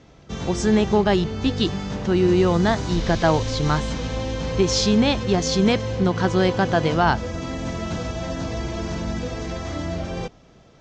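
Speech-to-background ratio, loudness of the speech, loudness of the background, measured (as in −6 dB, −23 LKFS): 7.0 dB, −21.0 LKFS, −28.0 LKFS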